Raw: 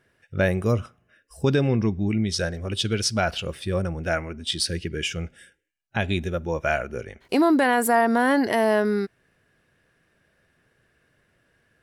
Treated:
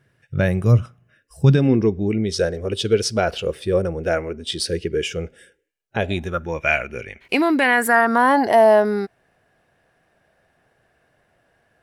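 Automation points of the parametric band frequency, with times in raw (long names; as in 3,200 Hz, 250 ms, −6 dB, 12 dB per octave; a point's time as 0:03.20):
parametric band +13 dB 0.71 octaves
0:01.46 130 Hz
0:01.87 450 Hz
0:05.99 450 Hz
0:06.59 2,400 Hz
0:07.63 2,400 Hz
0:08.49 740 Hz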